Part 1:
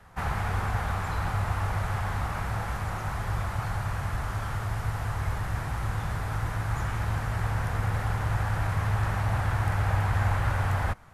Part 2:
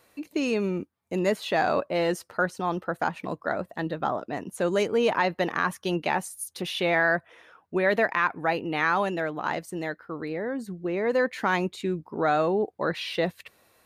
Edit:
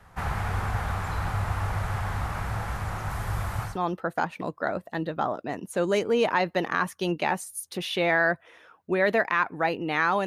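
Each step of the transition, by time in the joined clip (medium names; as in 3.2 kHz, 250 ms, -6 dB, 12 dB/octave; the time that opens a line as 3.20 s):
part 1
3.10–3.78 s: treble shelf 9.7 kHz +8 dB
3.70 s: go over to part 2 from 2.54 s, crossfade 0.16 s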